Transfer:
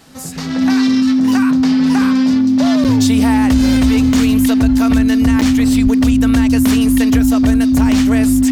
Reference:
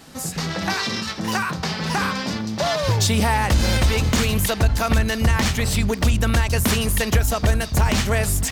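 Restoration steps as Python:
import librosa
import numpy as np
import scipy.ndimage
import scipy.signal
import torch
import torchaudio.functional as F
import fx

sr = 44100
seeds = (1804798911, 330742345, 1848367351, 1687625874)

y = fx.notch(x, sr, hz=260.0, q=30.0)
y = fx.fix_deplosive(y, sr, at_s=(5.83,))
y = fx.fix_interpolate(y, sr, at_s=(2.84, 5.41), length_ms=8.0)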